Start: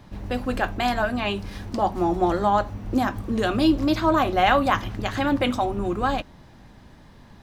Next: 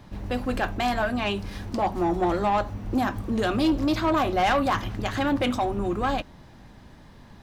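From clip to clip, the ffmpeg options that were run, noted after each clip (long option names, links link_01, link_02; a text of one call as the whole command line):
ffmpeg -i in.wav -af "asoftclip=type=tanh:threshold=-16.5dB" out.wav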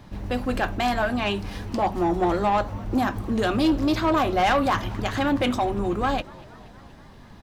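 ffmpeg -i in.wav -filter_complex "[0:a]asplit=6[link_01][link_02][link_03][link_04][link_05][link_06];[link_02]adelay=238,afreqshift=88,volume=-23.5dB[link_07];[link_03]adelay=476,afreqshift=176,volume=-27.2dB[link_08];[link_04]adelay=714,afreqshift=264,volume=-31dB[link_09];[link_05]adelay=952,afreqshift=352,volume=-34.7dB[link_10];[link_06]adelay=1190,afreqshift=440,volume=-38.5dB[link_11];[link_01][link_07][link_08][link_09][link_10][link_11]amix=inputs=6:normalize=0,volume=1.5dB" out.wav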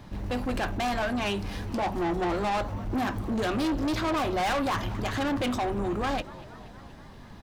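ffmpeg -i in.wav -af "asoftclip=type=tanh:threshold=-24.5dB" out.wav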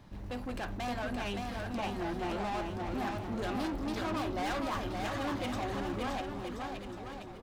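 ffmpeg -i in.wav -af "aecho=1:1:570|1026|1391|1683|1916:0.631|0.398|0.251|0.158|0.1,volume=-9dB" out.wav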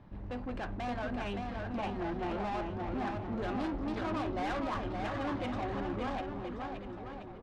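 ffmpeg -i in.wav -af "adynamicsmooth=sensitivity=3.5:basefreq=2400" out.wav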